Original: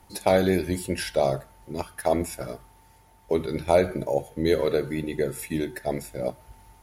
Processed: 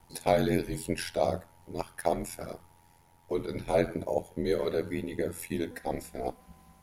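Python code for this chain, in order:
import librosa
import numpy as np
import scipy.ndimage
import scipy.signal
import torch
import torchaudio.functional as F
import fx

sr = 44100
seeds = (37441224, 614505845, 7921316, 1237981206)

y = fx.ring_mod(x, sr, carrier_hz=fx.steps((0.0, 43.0), (5.71, 120.0)))
y = y * 10.0 ** (-2.0 / 20.0)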